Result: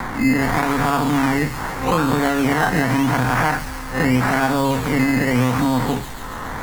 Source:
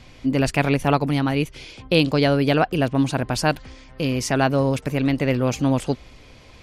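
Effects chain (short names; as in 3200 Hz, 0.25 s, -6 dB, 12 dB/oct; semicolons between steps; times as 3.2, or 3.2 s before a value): time blur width 98 ms; limiter -17 dBFS, peak gain reduction 9.5 dB; reverb, pre-delay 4 ms, DRR 6.5 dB; decimation with a swept rate 15×, swing 60% 0.83 Hz; low shelf 320 Hz +5.5 dB; vibrato 0.7 Hz 10 cents; band shelf 1300 Hz +12 dB; thin delay 0.139 s, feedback 56%, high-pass 4100 Hz, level -3.5 dB; three-band squash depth 70%; gain +2 dB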